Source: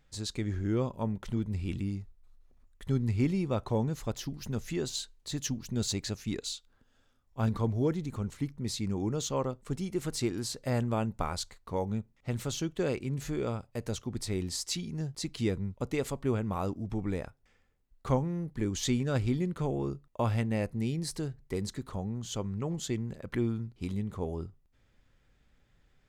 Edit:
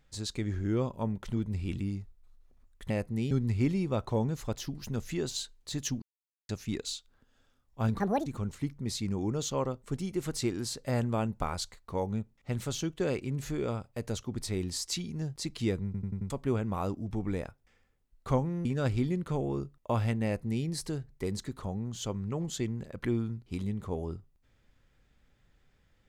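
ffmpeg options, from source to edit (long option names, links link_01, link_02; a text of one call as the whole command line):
ffmpeg -i in.wav -filter_complex "[0:a]asplit=13[link_01][link_02][link_03][link_04][link_05][link_06][link_07][link_08][link_09][link_10][link_11][link_12][link_13];[link_01]atrim=end=2.902[link_14];[link_02]atrim=start=20.538:end=20.952[link_15];[link_03]atrim=start=2.898:end=5.61,asetpts=PTS-STARTPTS,afade=type=out:start_time=2.708:duration=0.004:curve=hsin[link_16];[link_04]atrim=start=5.61:end=6.08,asetpts=PTS-STARTPTS,volume=0[link_17];[link_05]atrim=start=6.08:end=7.594,asetpts=PTS-STARTPTS,afade=type=in:duration=0.004:curve=hsin[link_18];[link_06]atrim=start=7.59:end=8.05,asetpts=PTS-STARTPTS,asetrate=77616,aresample=44100,atrim=end_sample=11526,asetpts=PTS-STARTPTS[link_19];[link_07]atrim=start=8.046:end=15.732[link_20];[link_08]atrim=start=15.638:end=15.732[link_21];[link_09]atrim=start=15.638:end=15.732[link_22];[link_10]atrim=start=15.638:end=15.732[link_23];[link_11]atrim=start=15.638:end=15.732[link_24];[link_12]atrim=start=16.088:end=18.442[link_25];[link_13]atrim=start=18.948[link_26];[link_14][link_15]acrossfade=duration=0.004:curve1=hsin:curve2=hsin[link_27];[link_16][link_17][link_18]concat=n=3:v=0:a=1[link_28];[link_27][link_28]acrossfade=duration=0.004:curve1=hsin:curve2=hsin[link_29];[link_29][link_19]acrossfade=duration=0.004:curve1=hsin:curve2=hsin[link_30];[link_30][link_20]acrossfade=duration=0.004:curve1=hsin:curve2=hsin[link_31];[link_31][link_21]acrossfade=duration=0.004:curve1=hsin:curve2=hsin[link_32];[link_32][link_22]acrossfade=duration=0.004:curve1=hsin:curve2=hsin[link_33];[link_33][link_23]acrossfade=duration=0.004:curve1=hsin:curve2=hsin[link_34];[link_34][link_24]acrossfade=duration=0.004:curve1=hsin:curve2=hsin[link_35];[link_35][link_25]acrossfade=duration=0.004:curve1=hsin:curve2=hsin[link_36];[link_36][link_26]acrossfade=duration=0.004:curve1=hsin:curve2=hsin" out.wav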